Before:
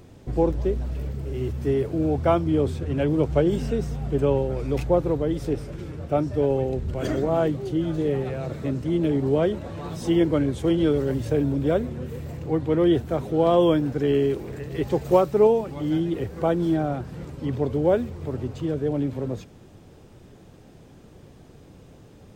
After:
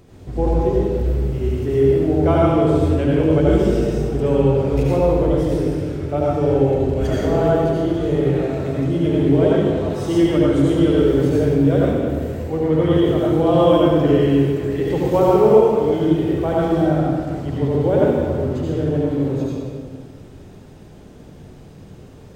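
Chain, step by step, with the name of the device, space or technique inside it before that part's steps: stairwell (reverberation RT60 1.8 s, pre-delay 68 ms, DRR -6 dB); trim -1 dB

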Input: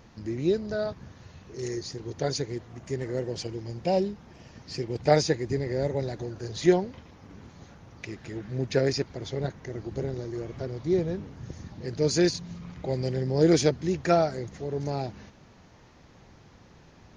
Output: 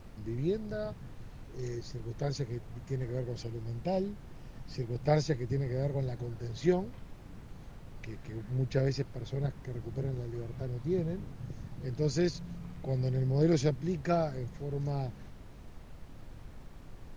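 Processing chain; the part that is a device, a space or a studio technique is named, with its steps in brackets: car interior (peaking EQ 130 Hz +8.5 dB 0.91 oct; treble shelf 4.8 kHz -6 dB; brown noise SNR 12 dB); trim -8 dB

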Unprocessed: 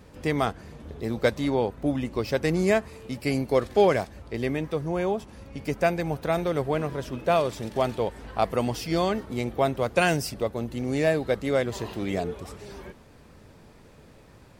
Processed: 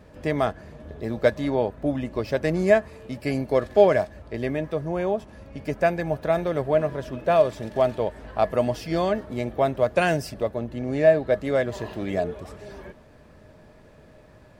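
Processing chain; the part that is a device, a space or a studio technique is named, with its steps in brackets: 10.56–11.32 s: treble shelf 5.3 kHz -8 dB; inside a helmet (treble shelf 3.9 kHz -7 dB; small resonant body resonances 620/1700 Hz, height 13 dB, ringing for 90 ms)

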